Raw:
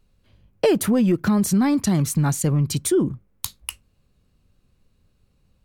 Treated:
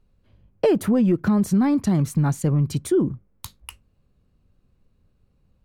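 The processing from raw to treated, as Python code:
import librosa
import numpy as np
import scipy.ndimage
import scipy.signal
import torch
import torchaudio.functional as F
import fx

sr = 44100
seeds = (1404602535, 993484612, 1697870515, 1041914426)

y = fx.high_shelf(x, sr, hz=2200.0, db=-10.5)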